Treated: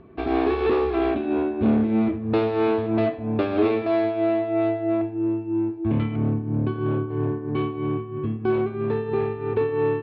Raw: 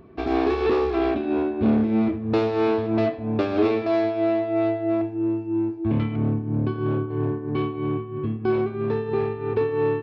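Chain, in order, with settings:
low-pass filter 4,000 Hz 24 dB per octave

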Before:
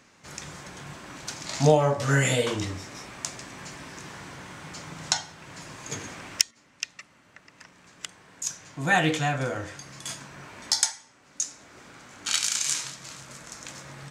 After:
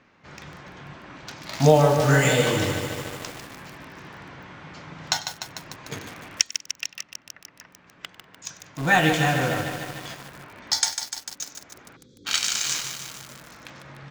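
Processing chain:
low-pass filter 7,500 Hz 12 dB per octave
low-pass that shuts in the quiet parts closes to 2,900 Hz, open at −19.5 dBFS
time-frequency box erased 0:11.96–0:12.25, 550–3,200 Hz
in parallel at −7.5 dB: bit reduction 5 bits
on the sum: feedback echo with a high-pass in the loop 97 ms, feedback 47%, high-pass 1,000 Hz, level −18.5 dB
feedback echo at a low word length 149 ms, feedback 80%, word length 6 bits, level −7.5 dB

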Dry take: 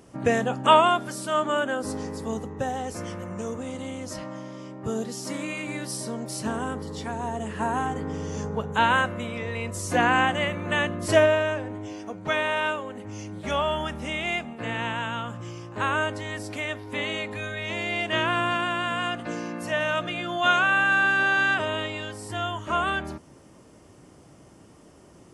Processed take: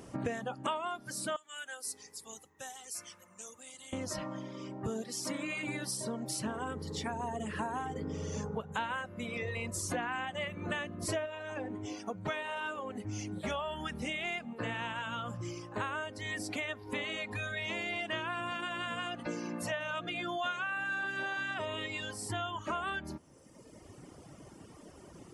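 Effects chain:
0:01.36–0:03.93: first-order pre-emphasis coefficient 0.97
reverb reduction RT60 1.3 s
downward compressor 6 to 1, threshold −36 dBFS, peak gain reduction 22.5 dB
level +2 dB

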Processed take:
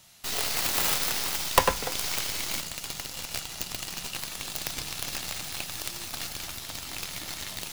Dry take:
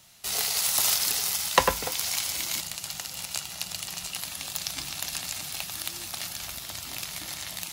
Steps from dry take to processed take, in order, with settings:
stylus tracing distortion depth 0.43 ms

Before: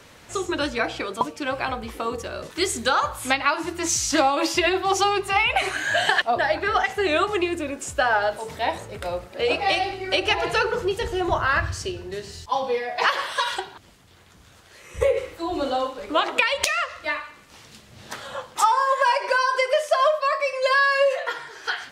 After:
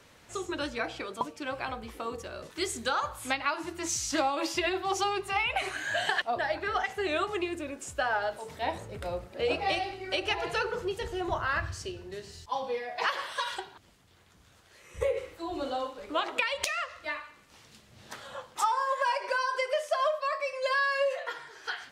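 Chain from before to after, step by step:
0:08.62–0:09.80: low-shelf EQ 430 Hz +6 dB
level −8.5 dB

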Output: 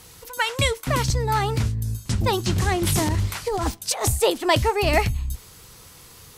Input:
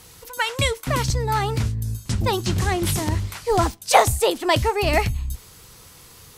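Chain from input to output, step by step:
0:02.87–0:04.07: compressor whose output falls as the input rises −23 dBFS, ratio −1

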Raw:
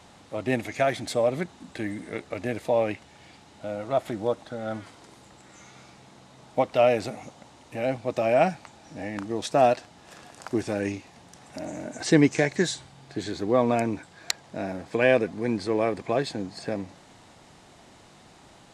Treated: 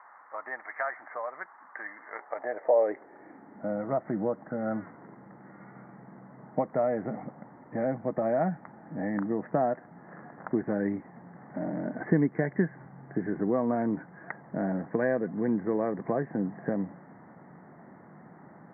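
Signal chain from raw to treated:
Butterworth low-pass 2,000 Hz 96 dB per octave
downward compressor 2.5 to 1, threshold −28 dBFS, peak gain reduction 10.5 dB
high-pass filter sweep 1,100 Hz → 170 Hz, 0:02.03–0:03.78

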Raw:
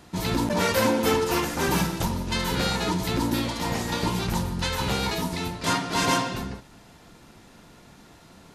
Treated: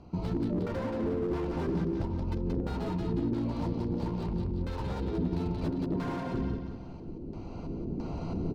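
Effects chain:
adaptive Wiener filter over 25 samples
camcorder AGC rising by 8.1 dB per second
treble cut that deepens with the level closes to 1,900 Hz, closed at −20 dBFS
low-shelf EQ 92 Hz +8.5 dB
downward compressor 6 to 1, threshold −28 dBFS, peak gain reduction 10.5 dB
auto-filter low-pass square 1.5 Hz 360–5,200 Hz
double-tracking delay 12 ms −13 dB
repeating echo 179 ms, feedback 45%, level −7.5 dB
slew-rate limiting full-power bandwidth 20 Hz
level −2 dB

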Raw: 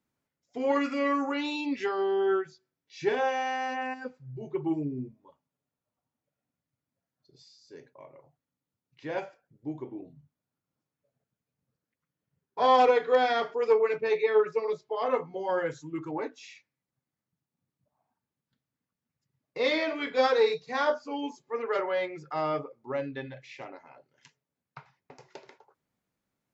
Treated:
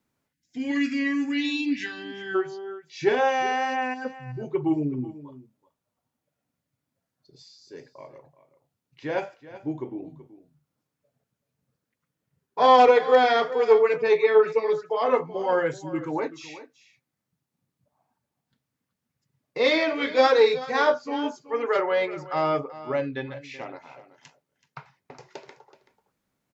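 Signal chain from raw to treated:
single-tap delay 379 ms −16 dB
gain on a spectral selection 0:00.33–0:02.35, 330–1,500 Hz −20 dB
tape wow and flutter 22 cents
level +5.5 dB

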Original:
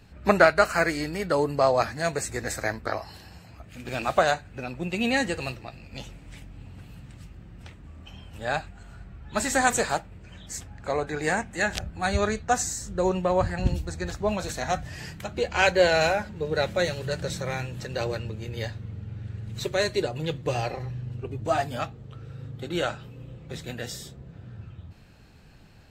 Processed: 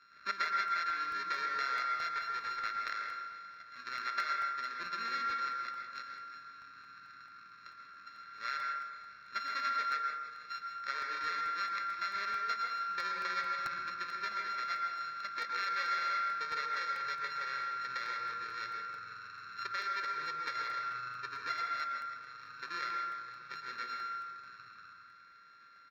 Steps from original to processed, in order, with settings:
samples sorted by size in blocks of 32 samples
Chebyshev high-pass filter 1,900 Hz, order 2
spectral tilt −1.5 dB per octave
downward compressor 3 to 1, threshold −39 dBFS, peak gain reduction 17 dB
phaser with its sweep stopped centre 2,900 Hz, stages 6
0:02.12–0:02.65: hard clipping −38 dBFS, distortion −31 dB
high-frequency loss of the air 210 metres
repeating echo 161 ms, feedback 57%, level −13 dB
convolution reverb RT60 1.1 s, pre-delay 107 ms, DRR 1.5 dB
regular buffer underruns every 0.22 s, samples 64, repeat, from 0:00.46
level +8.5 dB

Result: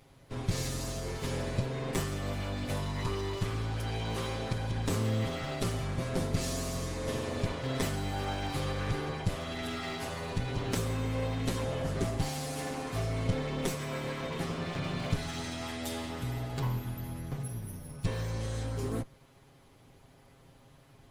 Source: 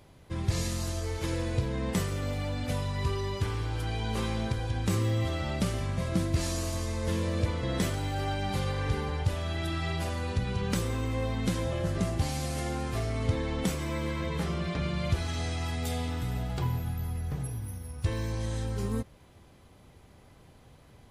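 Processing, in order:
lower of the sound and its delayed copy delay 7.4 ms
level −1 dB

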